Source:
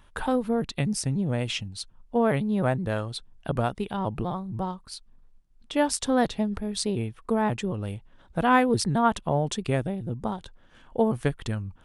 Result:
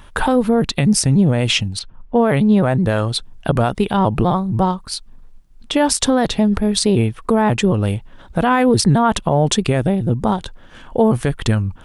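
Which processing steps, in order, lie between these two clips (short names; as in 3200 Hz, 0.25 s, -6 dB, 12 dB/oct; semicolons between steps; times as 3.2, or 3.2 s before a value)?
1.79–2.84 low-pass opened by the level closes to 2100 Hz, open at -18 dBFS; maximiser +18.5 dB; gain -4.5 dB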